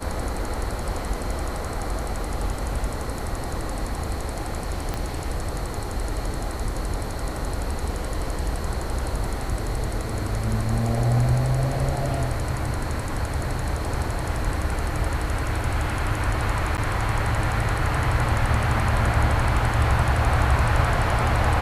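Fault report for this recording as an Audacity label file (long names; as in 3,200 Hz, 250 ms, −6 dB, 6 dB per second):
4.940000	4.940000	click −13 dBFS
16.770000	16.780000	drop-out 9.6 ms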